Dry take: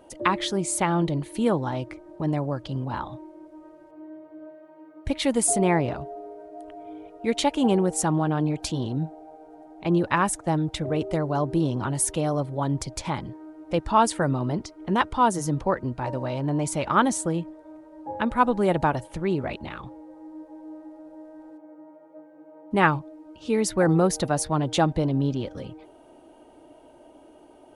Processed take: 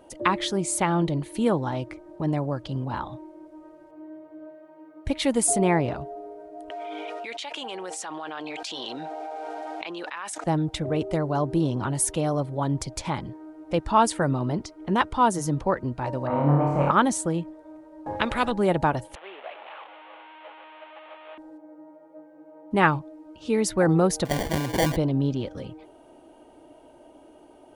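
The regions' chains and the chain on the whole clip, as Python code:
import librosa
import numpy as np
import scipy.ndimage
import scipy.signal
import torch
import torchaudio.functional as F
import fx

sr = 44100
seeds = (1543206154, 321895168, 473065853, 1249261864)

y = fx.chain(x, sr, fx.bandpass_edges(low_hz=320.0, high_hz=3100.0),
    fx.differentiator(),
    fx.env_flatten(amount_pct=100), at=(6.7, 10.44))
y = fx.chain(y, sr, fx.lowpass_res(hz=1200.0, q=4.6),
    fx.room_flutter(wall_m=4.8, rt60_s=1.1), at=(16.27, 16.91))
y = fx.chain(y, sr, fx.high_shelf(hz=4600.0, db=-9.0),
    fx.spectral_comp(ratio=2.0), at=(18.06, 18.52))
y = fx.chain(y, sr, fx.delta_mod(bps=16000, step_db=-26.5),
    fx.highpass(hz=640.0, slope=24),
    fx.peak_eq(hz=1700.0, db=-10.5, octaves=1.9), at=(19.15, 21.38))
y = fx.chain(y, sr, fx.low_shelf(hz=480.0, db=-4.5),
    fx.sample_hold(seeds[0], rate_hz=1300.0, jitter_pct=0),
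    fx.sustainer(db_per_s=69.0), at=(24.25, 24.96))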